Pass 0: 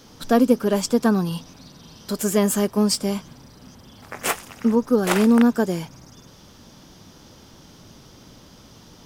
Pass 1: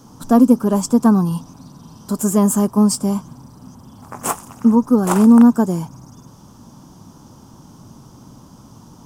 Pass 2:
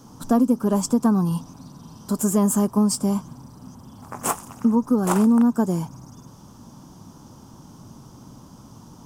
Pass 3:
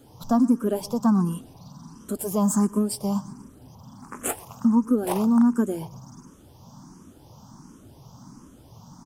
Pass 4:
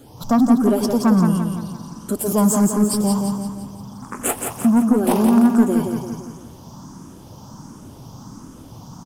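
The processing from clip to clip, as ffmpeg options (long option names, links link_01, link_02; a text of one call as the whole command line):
ffmpeg -i in.wav -af "equalizer=frequency=125:width_type=o:width=1:gain=7,equalizer=frequency=250:width_type=o:width=1:gain=6,equalizer=frequency=500:width_type=o:width=1:gain=-4,equalizer=frequency=1000:width_type=o:width=1:gain=10,equalizer=frequency=2000:width_type=o:width=1:gain=-11,equalizer=frequency=4000:width_type=o:width=1:gain=-8,equalizer=frequency=8000:width_type=o:width=1:gain=6" out.wav
ffmpeg -i in.wav -af "acompressor=threshold=-14dB:ratio=3,volume=-2dB" out.wav
ffmpeg -i in.wav -filter_complex "[0:a]aecho=1:1:121|242|363|484:0.0891|0.0437|0.0214|0.0105,asplit=2[link_01][link_02];[link_02]afreqshift=1.4[link_03];[link_01][link_03]amix=inputs=2:normalize=1" out.wav
ffmpeg -i in.wav -af "asoftclip=type=tanh:threshold=-16dB,aecho=1:1:171|342|513|684|855|1026:0.562|0.276|0.135|0.0662|0.0324|0.0159,volume=7dB" out.wav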